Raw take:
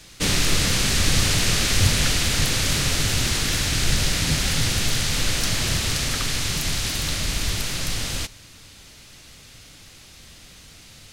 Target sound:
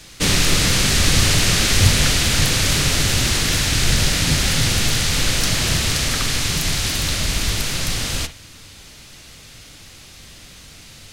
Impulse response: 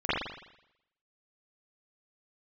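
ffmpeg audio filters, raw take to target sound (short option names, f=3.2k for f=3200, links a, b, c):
-filter_complex "[0:a]asplit=2[a][b];[1:a]atrim=start_sample=2205,atrim=end_sample=3528[c];[b][c]afir=irnorm=-1:irlink=0,volume=-21.5dB[d];[a][d]amix=inputs=2:normalize=0,volume=3.5dB"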